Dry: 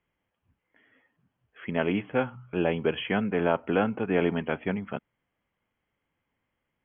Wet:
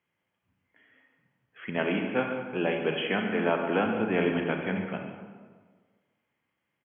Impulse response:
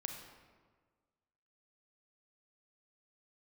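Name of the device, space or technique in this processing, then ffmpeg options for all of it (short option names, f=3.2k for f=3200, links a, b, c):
PA in a hall: -filter_complex "[0:a]asettb=1/sr,asplit=3[a][b][c];[a]atrim=end=1.774[d];[b]atrim=start=1.77:end=3.86,asetpts=PTS-STARTPTS,afade=t=in:d=0.004:c=qsin,afade=t=out:st=2.086:d=0.004:c=qsin,highpass=150[e];[c]atrim=start=3.856[f];[d][e]acrossfade=d=0.004:c1=hsin:c2=qsin[g];[g][f]acrossfade=d=0.004:c1=qsin:c2=hsin,highpass=110,equalizer=f=2.6k:t=o:w=2:g=3.5,aecho=1:1:143:0.251[h];[1:a]atrim=start_sample=2205[i];[h][i]afir=irnorm=-1:irlink=0"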